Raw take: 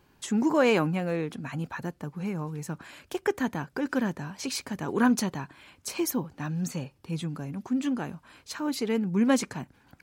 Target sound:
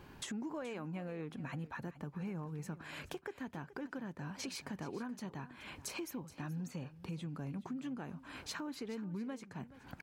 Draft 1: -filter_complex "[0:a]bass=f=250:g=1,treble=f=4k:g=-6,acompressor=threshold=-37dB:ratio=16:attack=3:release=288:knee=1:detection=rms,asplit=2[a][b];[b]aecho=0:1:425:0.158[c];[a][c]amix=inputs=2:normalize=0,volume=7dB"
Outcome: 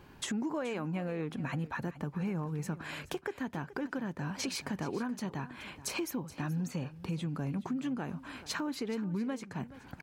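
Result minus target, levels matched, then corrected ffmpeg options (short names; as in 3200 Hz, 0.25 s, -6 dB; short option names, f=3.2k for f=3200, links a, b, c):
compressor: peak gain reduction -7 dB
-filter_complex "[0:a]bass=f=250:g=1,treble=f=4k:g=-6,acompressor=threshold=-44.5dB:ratio=16:attack=3:release=288:knee=1:detection=rms,asplit=2[a][b];[b]aecho=0:1:425:0.158[c];[a][c]amix=inputs=2:normalize=0,volume=7dB"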